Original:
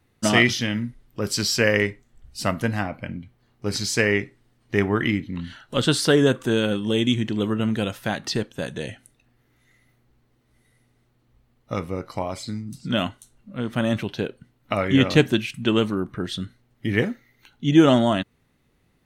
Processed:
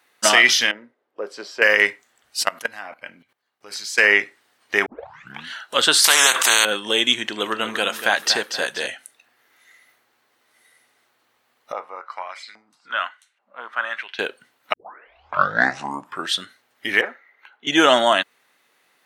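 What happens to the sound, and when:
0:00.71–0:01.62: resonant band-pass 460 Hz, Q 1.7
0:02.43–0:03.98: output level in coarse steps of 20 dB
0:04.86: tape start 0.61 s
0:06.04–0:06.65: every bin compressed towards the loudest bin 4 to 1
0:07.22–0:08.87: repeating echo 238 ms, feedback 39%, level −10 dB
0:11.72–0:14.19: auto-filter band-pass saw up 1.2 Hz 690–2,500 Hz
0:14.73: tape start 1.62 s
0:17.01–0:17.67: three-way crossover with the lows and the highs turned down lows −17 dB, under 340 Hz, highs −23 dB, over 2,300 Hz
whole clip: high-pass filter 760 Hz 12 dB per octave; parametric band 1,600 Hz +3 dB 0.2 octaves; boost into a limiter +11 dB; level −1 dB

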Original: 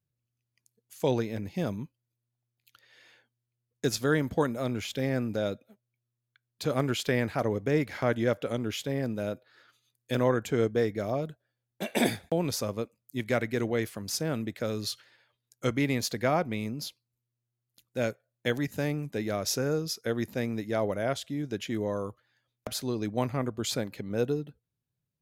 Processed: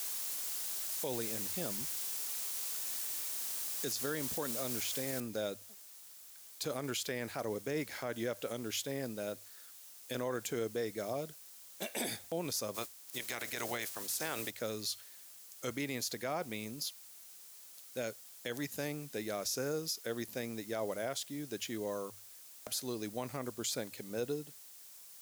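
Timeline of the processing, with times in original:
0:05.20: noise floor change −42 dB −57 dB
0:12.74–0:14.49: ceiling on every frequency bin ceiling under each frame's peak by 18 dB
whole clip: bass and treble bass −7 dB, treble +10 dB; mains-hum notches 50/100 Hz; brickwall limiter −20 dBFS; level −6 dB

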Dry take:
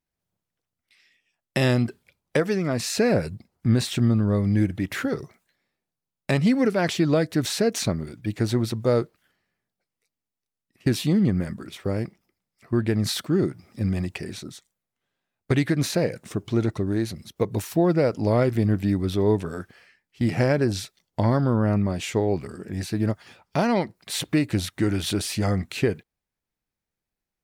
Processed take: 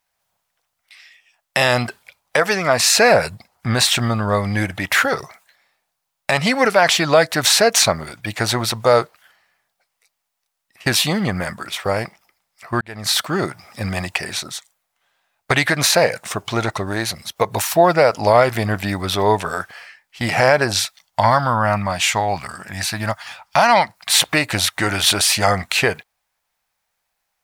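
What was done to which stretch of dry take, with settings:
0:12.81–0:13.35: fade in
0:20.80–0:24.14: parametric band 420 Hz −11.5 dB
whole clip: low shelf with overshoot 500 Hz −14 dB, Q 1.5; boost into a limiter +15.5 dB; level −1 dB

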